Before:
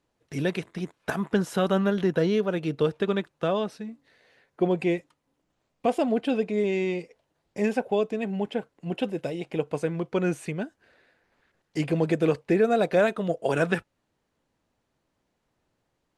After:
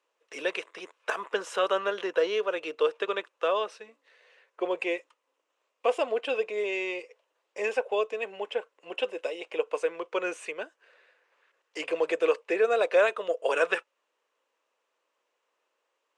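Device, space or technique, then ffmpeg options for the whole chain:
phone speaker on a table: -af "highpass=f=460:w=0.5412,highpass=f=460:w=1.3066,equalizer=f=490:t=q:w=4:g=4,equalizer=f=740:t=q:w=4:g=-6,equalizer=f=1.1k:t=q:w=4:g=6,equalizer=f=2.7k:t=q:w=4:g=6,equalizer=f=4.4k:t=q:w=4:g=-4,lowpass=f=8.9k:w=0.5412,lowpass=f=8.9k:w=1.3066"

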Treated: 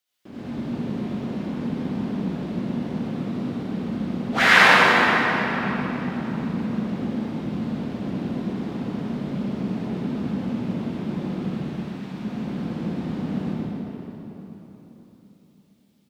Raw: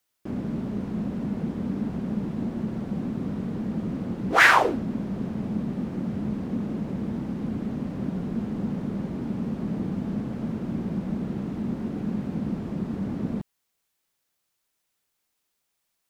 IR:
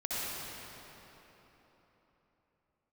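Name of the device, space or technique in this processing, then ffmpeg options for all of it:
PA in a hall: -filter_complex "[0:a]asettb=1/sr,asplit=3[a][b][c];[a]atrim=end=11.494[d];[b]atrim=start=11.49:end=12.14,asetpts=PTS-STARTPTS,afade=t=in:d=0.004:c=qsin,afade=t=out:st=0.646:d=0.004:c=qsin,highpass=990[e];[c]atrim=start=12.136[f];[d][e]acrossfade=d=0.004:c1=hsin:c2=qsin[g];[g][f]acrossfade=d=0.004:c1=qsin:c2=hsin,highpass=f=170:p=1,equalizer=f=3.5k:t=o:w=1.3:g=7.5,aecho=1:1:125:0.531[h];[1:a]atrim=start_sample=2205[i];[h][i]afir=irnorm=-1:irlink=0,volume=-4dB"

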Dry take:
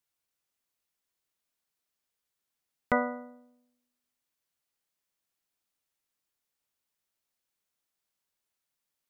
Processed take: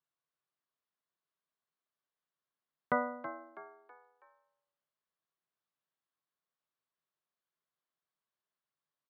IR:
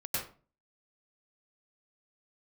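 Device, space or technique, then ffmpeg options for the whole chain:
frequency-shifting delay pedal into a guitar cabinet: -filter_complex "[0:a]asplit=5[a][b][c][d][e];[b]adelay=325,afreqshift=82,volume=-12.5dB[f];[c]adelay=650,afreqshift=164,volume=-20.2dB[g];[d]adelay=975,afreqshift=246,volume=-28dB[h];[e]adelay=1300,afreqshift=328,volume=-35.7dB[i];[a][f][g][h][i]amix=inputs=5:normalize=0,highpass=110,equalizer=f=150:t=q:w=4:g=9,equalizer=f=390:t=q:w=4:g=4,equalizer=f=630:t=q:w=4:g=5,equalizer=f=1.1k:t=q:w=4:g=9,equalizer=f=1.6k:t=q:w=4:g=4,equalizer=f=2.4k:t=q:w=4:g=-4,lowpass=f=4.2k:w=0.5412,lowpass=f=4.2k:w=1.3066,volume=-8dB"

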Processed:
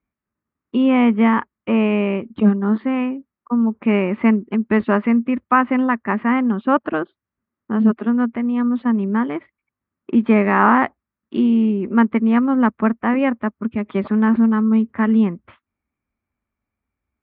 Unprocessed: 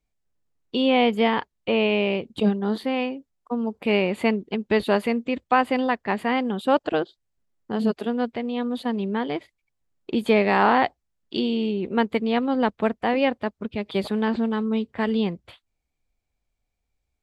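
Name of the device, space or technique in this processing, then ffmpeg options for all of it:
bass cabinet: -af "highpass=83,equalizer=f=140:t=q:w=4:g=-7,equalizer=f=230:t=q:w=4:g=6,equalizer=f=480:t=q:w=4:g=-8,equalizer=f=730:t=q:w=4:g=-8,equalizer=f=1.2k:t=q:w=4:g=6,lowpass=f=2.1k:w=0.5412,lowpass=f=2.1k:w=1.3066,volume=5dB"

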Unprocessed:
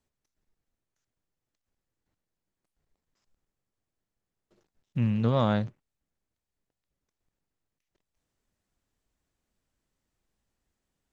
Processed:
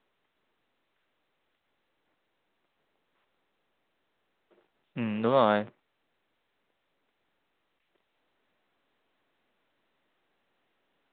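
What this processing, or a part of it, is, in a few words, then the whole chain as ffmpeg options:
telephone: -af "highpass=350,lowpass=3.3k,volume=5.5dB" -ar 8000 -c:a pcm_mulaw

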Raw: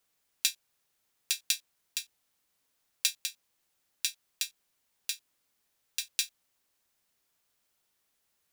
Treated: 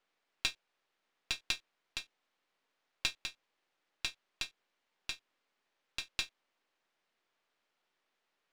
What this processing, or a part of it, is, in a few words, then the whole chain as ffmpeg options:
crystal radio: -af "highpass=280,lowpass=3k,aeval=exprs='if(lt(val(0),0),0.447*val(0),val(0))':c=same,volume=4.5dB"

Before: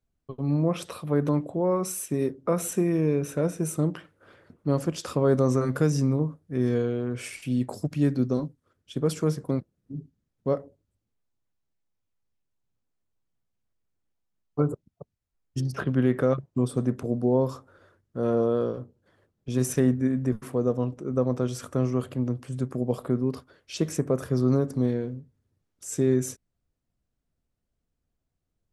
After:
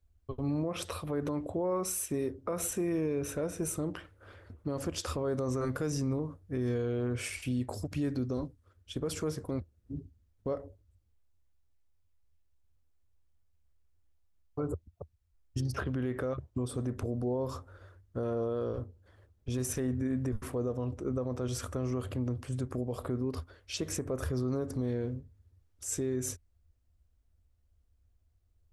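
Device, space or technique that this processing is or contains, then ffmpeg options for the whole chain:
car stereo with a boomy subwoofer: -af "lowshelf=f=110:t=q:w=3:g=10,alimiter=limit=-24dB:level=0:latency=1:release=98"

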